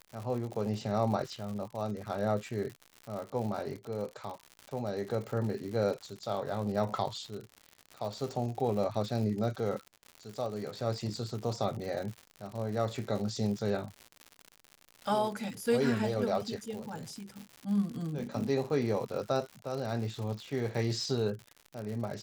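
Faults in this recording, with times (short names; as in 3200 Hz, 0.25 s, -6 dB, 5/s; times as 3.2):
crackle 130/s -38 dBFS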